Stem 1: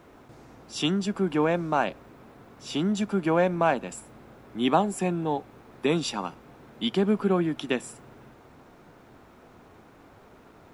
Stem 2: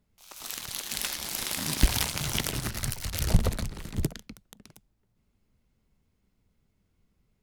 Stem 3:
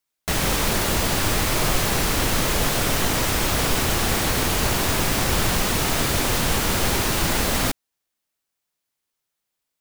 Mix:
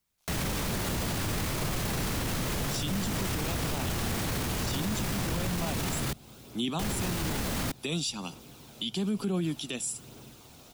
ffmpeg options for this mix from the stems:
-filter_complex "[0:a]aexciter=amount=5:drive=7.8:freq=2.7k,aphaser=in_gain=1:out_gain=1:delay=1.7:decay=0.28:speed=1.1:type=triangular,adelay=2000,volume=-4.5dB[a];[1:a]volume=-19dB[b];[2:a]lowshelf=f=110:g=-9,volume=0.5dB,asplit=3[c][d][e];[c]atrim=end=6.13,asetpts=PTS-STARTPTS,afade=t=out:st=6.126:d=0.004:c=hsin[f];[d]atrim=start=6.13:end=6.79,asetpts=PTS-STARTPTS,volume=0[g];[e]atrim=start=6.79,asetpts=PTS-STARTPTS,afade=t=in:d=0.004:c=hsin[h];[f][g][h]concat=n=3:v=0:a=1[i];[a][b][i]amix=inputs=3:normalize=0,equalizer=f=120:w=0.44:g=4,acrossover=split=220[j][k];[k]acompressor=threshold=-30dB:ratio=3[l];[j][l]amix=inputs=2:normalize=0,alimiter=limit=-22.5dB:level=0:latency=1:release=12"

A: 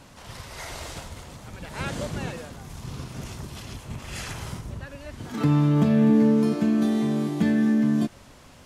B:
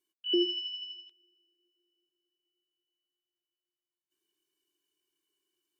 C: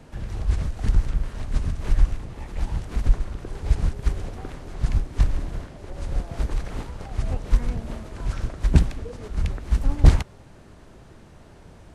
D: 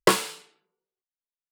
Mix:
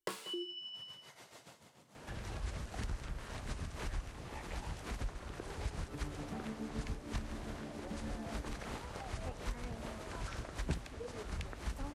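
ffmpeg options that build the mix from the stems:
-filter_complex "[0:a]highpass=f=130:w=0.5412,highpass=f=130:w=1.3066,tremolo=f=7:d=0.77,adelay=500,volume=-16.5dB,asplit=2[a][b];[b]volume=-9.5dB[c];[1:a]volume=-8dB[d];[2:a]highpass=41,lowshelf=f=340:g=-10.5,adelay=1950,volume=1dB[e];[3:a]volume=-14dB,asplit=2[f][g];[g]volume=-18.5dB[h];[c][h]amix=inputs=2:normalize=0,aecho=0:1:188:1[i];[a][d][e][f][i]amix=inputs=5:normalize=0,acompressor=threshold=-43dB:ratio=2"

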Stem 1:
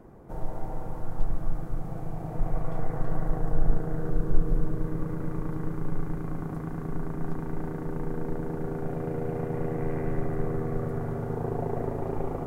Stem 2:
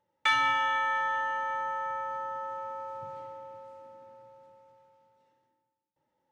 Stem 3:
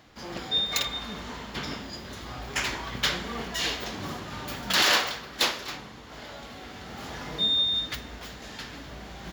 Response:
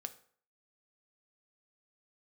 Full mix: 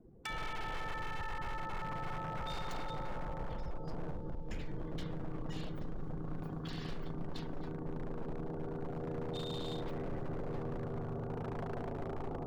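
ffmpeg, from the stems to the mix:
-filter_complex "[0:a]acompressor=threshold=-22dB:ratio=16,volume=-10dB,asplit=2[a][b];[b]volume=-5.5dB[c];[1:a]bandreject=f=580:w=12,acompressor=threshold=-37dB:ratio=10,volume=-1.5dB[d];[2:a]highpass=1.1k,acompressor=threshold=-27dB:ratio=6,adelay=1950,volume=-19.5dB[e];[3:a]atrim=start_sample=2205[f];[c][f]afir=irnorm=-1:irlink=0[g];[a][d][e][g]amix=inputs=4:normalize=0,afftdn=nr=17:nf=-52,aeval=exprs='0.0224*(abs(mod(val(0)/0.0224+3,4)-2)-1)':c=same"

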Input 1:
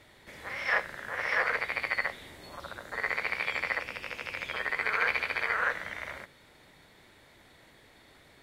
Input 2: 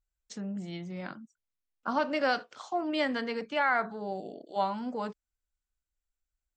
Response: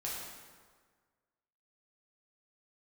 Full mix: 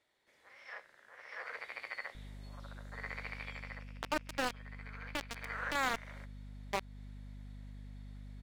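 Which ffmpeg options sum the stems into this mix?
-filter_complex "[0:a]bass=f=250:g=-11,treble=f=4k:g=10,volume=-0.5dB,afade=t=in:st=1.28:d=0.38:silence=0.398107,afade=t=out:st=3.28:d=0.69:silence=0.316228,afade=t=in:st=5.26:d=0.32:silence=0.266073[a];[1:a]asoftclip=type=tanh:threshold=-20dB,acrusher=bits=3:mix=0:aa=0.000001,aeval=exprs='val(0)+0.00447*(sin(2*PI*50*n/s)+sin(2*PI*2*50*n/s)/2+sin(2*PI*3*50*n/s)/3+sin(2*PI*4*50*n/s)/4+sin(2*PI*5*50*n/s)/5)':c=same,adelay=2150,volume=0dB[b];[a][b]amix=inputs=2:normalize=0,aemphasis=mode=reproduction:type=50kf,alimiter=limit=-21.5dB:level=0:latency=1:release=239"

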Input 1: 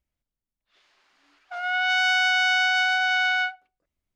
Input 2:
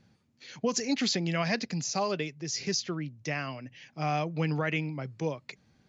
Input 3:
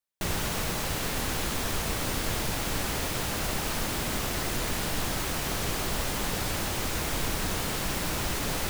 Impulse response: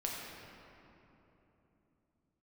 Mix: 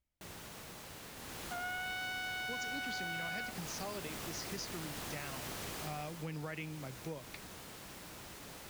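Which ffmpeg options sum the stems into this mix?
-filter_complex "[0:a]acompressor=threshold=-26dB:ratio=2,volume=-4dB[a];[1:a]adelay=1850,volume=-7.5dB[b];[2:a]highpass=f=100:p=1,volume=-9dB,afade=t=in:st=1.16:d=0.66:silence=0.334965,afade=t=out:st=5.84:d=0.39:silence=0.316228[c];[a][b][c]amix=inputs=3:normalize=0,acompressor=threshold=-40dB:ratio=3"

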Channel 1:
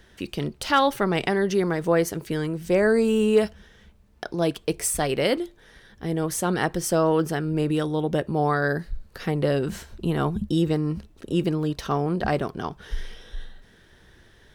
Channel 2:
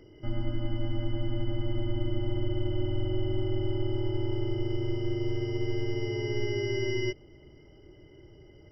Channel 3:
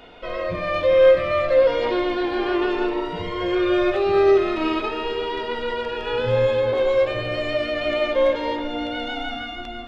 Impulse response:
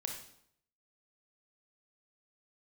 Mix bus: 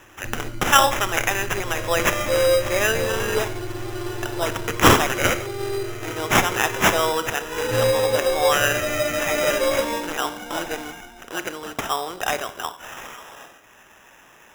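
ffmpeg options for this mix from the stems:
-filter_complex "[0:a]highpass=800,volume=0.5dB,asplit=2[a][b];[b]volume=-3dB[c];[1:a]volume=-3dB[d];[2:a]dynaudnorm=f=500:g=3:m=11.5dB,bandreject=f=89.98:t=h:w=4,bandreject=f=179.96:t=h:w=4,bandreject=f=269.94:t=h:w=4,bandreject=f=359.92:t=h:w=4,bandreject=f=449.9:t=h:w=4,bandreject=f=539.88:t=h:w=4,bandreject=f=629.86:t=h:w=4,bandreject=f=719.84:t=h:w=4,bandreject=f=809.82:t=h:w=4,bandreject=f=899.8:t=h:w=4,bandreject=f=989.78:t=h:w=4,bandreject=f=1.07976k:t=h:w=4,bandreject=f=1.16974k:t=h:w=4,bandreject=f=1.25972k:t=h:w=4,bandreject=f=1.3497k:t=h:w=4,bandreject=f=1.43968k:t=h:w=4,bandreject=f=1.52966k:t=h:w=4,bandreject=f=1.61964k:t=h:w=4,bandreject=f=1.70962k:t=h:w=4,bandreject=f=1.7996k:t=h:w=4,bandreject=f=1.88958k:t=h:w=4,bandreject=f=1.97956k:t=h:w=4,bandreject=f=2.06954k:t=h:w=4,bandreject=f=2.15952k:t=h:w=4,bandreject=f=2.2495k:t=h:w=4,bandreject=f=2.33948k:t=h:w=4,bandreject=f=2.42946k:t=h:w=4,bandreject=f=2.51944k:t=h:w=4,bandreject=f=2.60942k:t=h:w=4,bandreject=f=2.6994k:t=h:w=4,bandreject=f=2.78938k:t=h:w=4,bandreject=f=2.87936k:t=h:w=4,bandreject=f=2.96934k:t=h:w=4,bandreject=f=3.05932k:t=h:w=4,bandreject=f=3.1493k:t=h:w=4,bandreject=f=3.23928k:t=h:w=4,bandreject=f=3.32926k:t=h:w=4,bandreject=f=3.41924k:t=h:w=4,bandreject=f=3.50922k:t=h:w=4,adelay=1450,volume=1.5dB,afade=t=out:st=2.27:d=0.64:silence=0.298538,afade=t=in:st=7.4:d=0.45:silence=0.354813,afade=t=out:st=9.91:d=0.27:silence=0.334965[e];[3:a]atrim=start_sample=2205[f];[c][f]afir=irnorm=-1:irlink=0[g];[a][d][e][g]amix=inputs=4:normalize=0,highshelf=f=3.3k:g=10.5,acrusher=samples=10:mix=1:aa=0.000001"

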